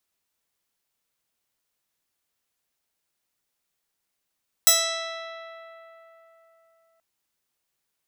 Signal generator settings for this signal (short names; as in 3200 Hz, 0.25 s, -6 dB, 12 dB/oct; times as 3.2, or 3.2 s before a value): plucked string E5, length 2.33 s, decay 3.84 s, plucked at 0.29, bright